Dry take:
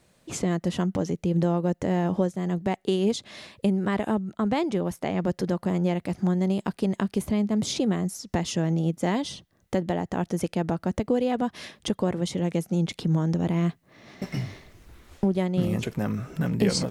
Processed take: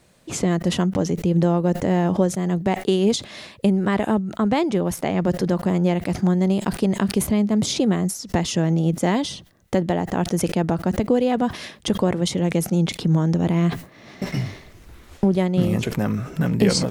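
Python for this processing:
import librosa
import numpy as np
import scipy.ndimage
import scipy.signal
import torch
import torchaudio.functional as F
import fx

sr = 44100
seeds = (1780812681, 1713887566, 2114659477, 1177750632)

y = fx.sustainer(x, sr, db_per_s=150.0)
y = y * 10.0 ** (5.0 / 20.0)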